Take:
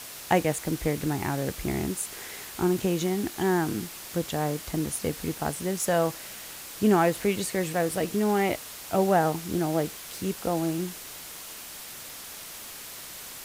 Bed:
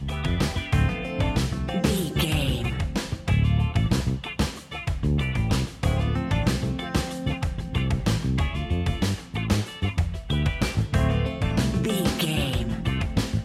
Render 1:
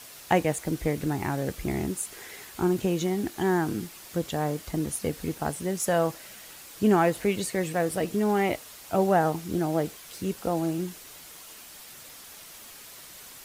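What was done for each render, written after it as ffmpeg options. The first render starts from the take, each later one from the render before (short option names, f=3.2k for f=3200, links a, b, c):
-af "afftdn=nr=6:nf=-42"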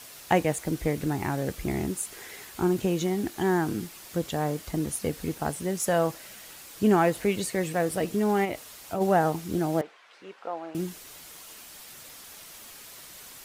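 -filter_complex "[0:a]asplit=3[a][b][c];[a]afade=t=out:st=8.44:d=0.02[d];[b]acompressor=threshold=-28dB:ratio=2.5:attack=3.2:release=140:knee=1:detection=peak,afade=t=in:st=8.44:d=0.02,afade=t=out:st=9:d=0.02[e];[c]afade=t=in:st=9:d=0.02[f];[d][e][f]amix=inputs=3:normalize=0,asettb=1/sr,asplit=3[g][h][i];[g]atrim=end=9.814[j];[h]atrim=start=9.81:end=10.75,asetpts=PTS-STARTPTS,afade=t=in:d=0.004:c=qsin,afade=t=out:st=0.936:d=0.004:c=qsin,highpass=740,lowpass=2.1k[k];[i]atrim=start=10.746[l];[j][k]acrossfade=d=0.004:c1=hsin:c2=qsin[m];[m][l]acrossfade=d=0.004:c1=qsin:c2=hsin"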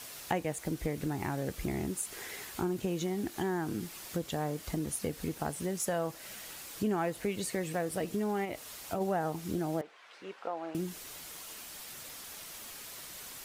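-af "acompressor=threshold=-33dB:ratio=2.5"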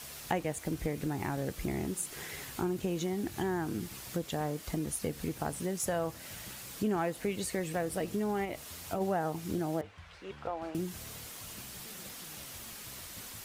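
-filter_complex "[1:a]volume=-29.5dB[a];[0:a][a]amix=inputs=2:normalize=0"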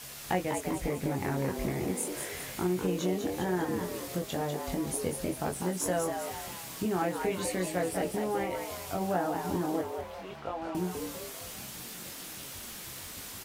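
-filter_complex "[0:a]asplit=2[a][b];[b]adelay=22,volume=-4dB[c];[a][c]amix=inputs=2:normalize=0,asplit=7[d][e][f][g][h][i][j];[e]adelay=198,afreqshift=110,volume=-6dB[k];[f]adelay=396,afreqshift=220,volume=-12.7dB[l];[g]adelay=594,afreqshift=330,volume=-19.5dB[m];[h]adelay=792,afreqshift=440,volume=-26.2dB[n];[i]adelay=990,afreqshift=550,volume=-33dB[o];[j]adelay=1188,afreqshift=660,volume=-39.7dB[p];[d][k][l][m][n][o][p]amix=inputs=7:normalize=0"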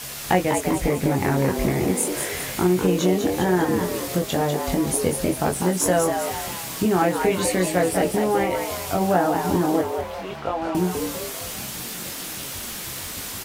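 -af "volume=10.5dB"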